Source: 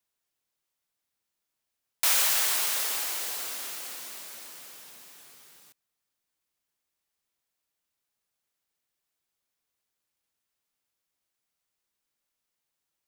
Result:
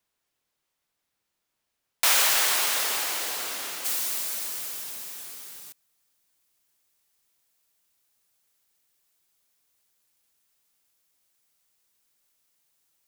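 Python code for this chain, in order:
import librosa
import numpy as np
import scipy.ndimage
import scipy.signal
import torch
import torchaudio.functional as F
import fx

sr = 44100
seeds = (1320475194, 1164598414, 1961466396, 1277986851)

y = fx.high_shelf(x, sr, hz=4800.0, db=fx.steps((0.0, -5.5), (3.84, 7.0)))
y = F.gain(torch.from_numpy(y), 6.5).numpy()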